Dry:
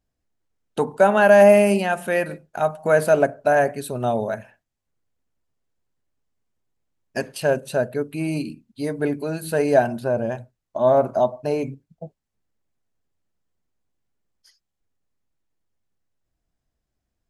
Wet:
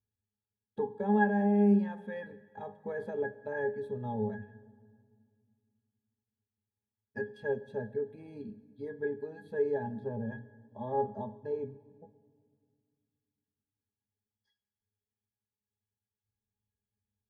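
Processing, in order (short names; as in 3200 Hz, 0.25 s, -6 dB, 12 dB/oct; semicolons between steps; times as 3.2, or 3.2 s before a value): limiter -9 dBFS, peak gain reduction 6 dB; octave resonator G#, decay 0.15 s; on a send: reverb RT60 2.1 s, pre-delay 5 ms, DRR 15.5 dB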